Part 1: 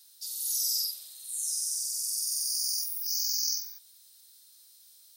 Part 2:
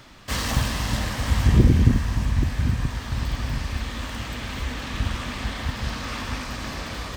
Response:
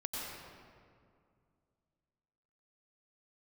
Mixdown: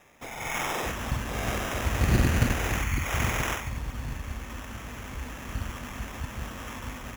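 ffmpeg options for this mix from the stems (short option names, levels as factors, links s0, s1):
-filter_complex "[0:a]volume=1.33[s0];[1:a]acontrast=52,adelay=550,volume=0.335[s1];[s0][s1]amix=inputs=2:normalize=0,acrusher=samples=10:mix=1:aa=0.000001,aeval=exprs='0.376*(cos(1*acos(clip(val(0)/0.376,-1,1)))-cos(1*PI/2))+0.0473*(cos(3*acos(clip(val(0)/0.376,-1,1)))-cos(3*PI/2))':c=same"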